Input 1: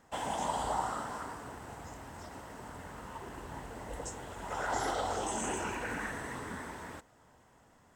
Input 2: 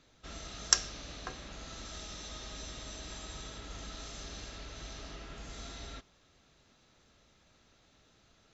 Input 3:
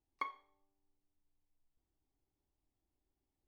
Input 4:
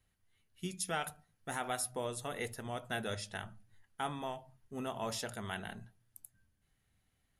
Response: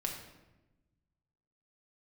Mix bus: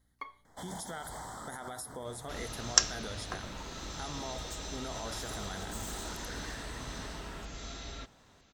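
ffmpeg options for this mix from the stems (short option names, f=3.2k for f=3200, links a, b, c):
-filter_complex "[0:a]acrossover=split=220|3000[a][b][c];[b]acompressor=threshold=-52dB:ratio=1.5[d];[a][d][c]amix=inputs=3:normalize=0,aeval=exprs='0.015*(abs(mod(val(0)/0.015+3,4)-2)-1)':c=same,adelay=450,volume=-1dB[e];[1:a]adelay=2050,volume=2dB[f];[2:a]aecho=1:1:7:0.59,aeval=exprs='val(0)+0.000355*(sin(2*PI*60*n/s)+sin(2*PI*2*60*n/s)/2+sin(2*PI*3*60*n/s)/3+sin(2*PI*4*60*n/s)/4+sin(2*PI*5*60*n/s)/5)':c=same,volume=-4.5dB[g];[3:a]volume=2dB[h];[e][h]amix=inputs=2:normalize=0,asuperstop=centerf=2600:order=8:qfactor=2.6,alimiter=level_in=8dB:limit=-24dB:level=0:latency=1:release=64,volume=-8dB,volume=0dB[i];[f][g][i]amix=inputs=3:normalize=0"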